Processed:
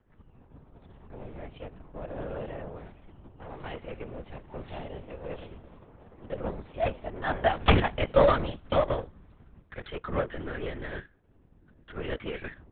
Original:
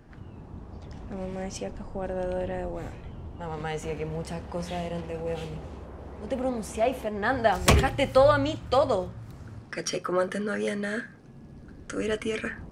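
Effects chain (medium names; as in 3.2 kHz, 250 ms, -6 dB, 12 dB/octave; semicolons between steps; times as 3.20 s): power-law waveshaper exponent 1.4; LPC vocoder at 8 kHz whisper; trim +3 dB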